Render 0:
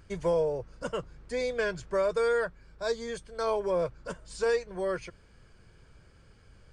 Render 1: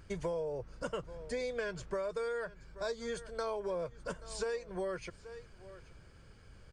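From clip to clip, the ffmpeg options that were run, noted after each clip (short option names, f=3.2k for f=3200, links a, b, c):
-af "aecho=1:1:829:0.075,acompressor=threshold=-34dB:ratio=6"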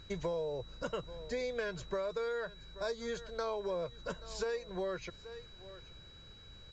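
-af "aeval=exprs='val(0)+0.00158*sin(2*PI*3900*n/s)':c=same" -ar 16000 -c:a pcm_alaw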